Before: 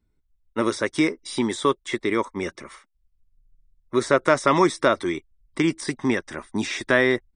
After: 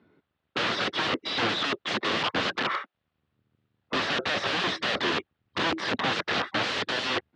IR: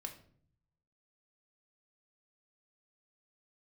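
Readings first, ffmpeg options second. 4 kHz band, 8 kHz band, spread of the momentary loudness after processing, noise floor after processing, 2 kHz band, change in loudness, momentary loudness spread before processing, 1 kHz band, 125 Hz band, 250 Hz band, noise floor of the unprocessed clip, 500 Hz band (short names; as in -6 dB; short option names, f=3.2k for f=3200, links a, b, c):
+6.5 dB, -8.0 dB, 4 LU, -81 dBFS, -1.0 dB, -4.0 dB, 11 LU, -3.0 dB, -7.0 dB, -10.0 dB, -69 dBFS, -9.5 dB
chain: -filter_complex "[0:a]asplit=2[a][b];[b]highpass=f=720:p=1,volume=31dB,asoftclip=type=tanh:threshold=-3dB[c];[a][c]amix=inputs=2:normalize=0,lowpass=f=1.1k:p=1,volume=-6dB,aeval=exprs='(mod(7.94*val(0)+1,2)-1)/7.94':c=same,highpass=f=100:w=0.5412,highpass=f=100:w=1.3066,equalizer=f=130:t=q:w=4:g=-4,equalizer=f=940:t=q:w=4:g=-4,equalizer=f=2.2k:t=q:w=4:g=-4,lowpass=f=3.8k:w=0.5412,lowpass=f=3.8k:w=1.3066"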